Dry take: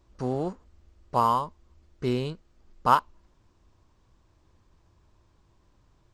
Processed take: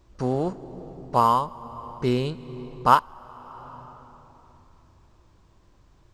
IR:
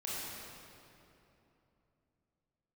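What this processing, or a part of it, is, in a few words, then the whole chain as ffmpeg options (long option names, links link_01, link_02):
ducked reverb: -filter_complex "[0:a]asplit=3[link_01][link_02][link_03];[1:a]atrim=start_sample=2205[link_04];[link_02][link_04]afir=irnorm=-1:irlink=0[link_05];[link_03]apad=whole_len=270766[link_06];[link_05][link_06]sidechaincompress=threshold=-33dB:ratio=16:attack=5.7:release=521,volume=-10dB[link_07];[link_01][link_07]amix=inputs=2:normalize=0,volume=3.5dB"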